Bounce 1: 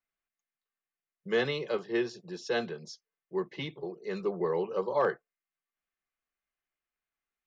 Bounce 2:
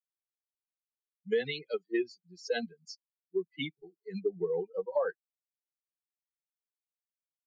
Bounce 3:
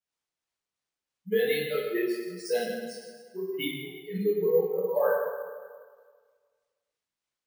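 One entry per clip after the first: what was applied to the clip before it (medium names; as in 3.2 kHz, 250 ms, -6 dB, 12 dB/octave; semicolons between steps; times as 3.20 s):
expander on every frequency bin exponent 3; ten-band graphic EQ 250 Hz +5 dB, 500 Hz +11 dB, 1 kHz -5 dB, 2 kHz +8 dB, 4 kHz +6 dB; compression 4:1, threshold -27 dBFS, peak gain reduction 10 dB
harmonic tremolo 3.1 Hz, depth 50%, crossover 560 Hz; reverberation RT60 1.7 s, pre-delay 8 ms, DRR -8 dB; careless resampling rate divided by 3×, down none, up hold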